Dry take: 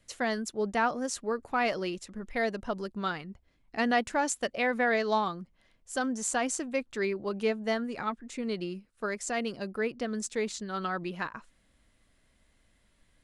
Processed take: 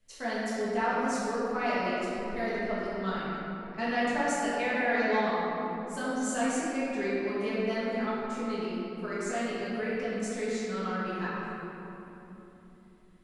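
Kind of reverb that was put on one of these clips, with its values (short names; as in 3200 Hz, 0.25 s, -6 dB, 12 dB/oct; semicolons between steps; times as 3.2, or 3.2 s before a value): shoebox room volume 180 m³, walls hard, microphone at 1.5 m; gain -10.5 dB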